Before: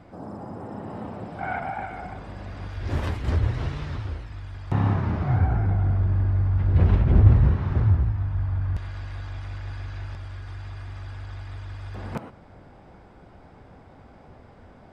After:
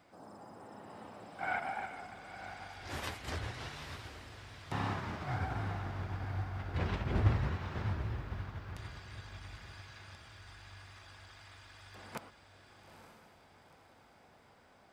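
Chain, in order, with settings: tilt EQ +3.5 dB/octave; echo that smears into a reverb 893 ms, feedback 41%, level -7.5 dB; upward expansion 1.5:1, over -39 dBFS; trim -1.5 dB

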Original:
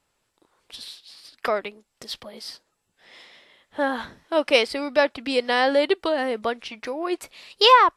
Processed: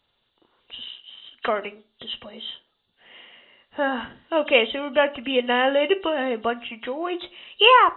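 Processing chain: knee-point frequency compression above 2.7 kHz 4:1; on a send: reverberation RT60 0.40 s, pre-delay 4 ms, DRR 11.5 dB

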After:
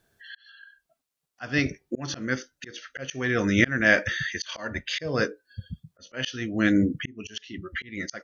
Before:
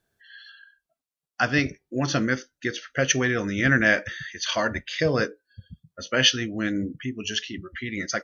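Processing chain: slow attack 493 ms; trim +6.5 dB

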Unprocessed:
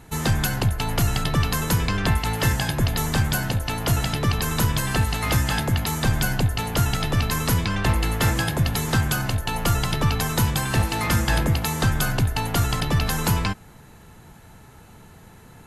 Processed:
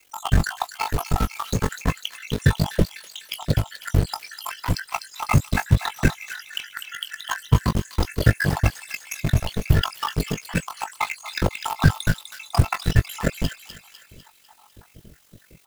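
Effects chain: random holes in the spectrogram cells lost 84%; treble shelf 8 kHz -12 dB; added noise white -63 dBFS; ring modulator 23 Hz; in parallel at -5 dB: bit crusher 5-bit; on the sum: doubling 19 ms -12 dB; on a send: feedback echo behind a high-pass 250 ms, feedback 53%, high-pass 2.3 kHz, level -7 dB; on the sum: trim +5.5 dB

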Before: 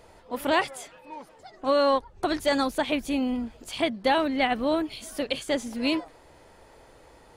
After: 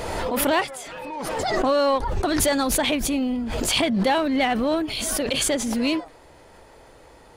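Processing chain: in parallel at -6 dB: overload inside the chain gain 27 dB; on the sum: swell ahead of each attack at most 23 dB/s

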